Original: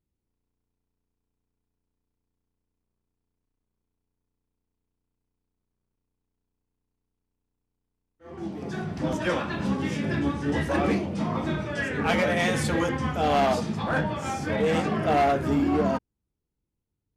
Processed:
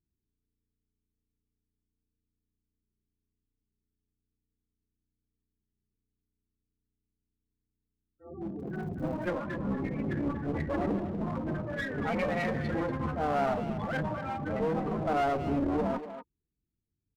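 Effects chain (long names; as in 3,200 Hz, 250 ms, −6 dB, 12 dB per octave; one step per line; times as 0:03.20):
spectral peaks only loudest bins 16
asymmetric clip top −32 dBFS
0:08.58–0:09.28: surface crackle 43 per second → 120 per second −45 dBFS
far-end echo of a speakerphone 240 ms, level −9 dB
level −2.5 dB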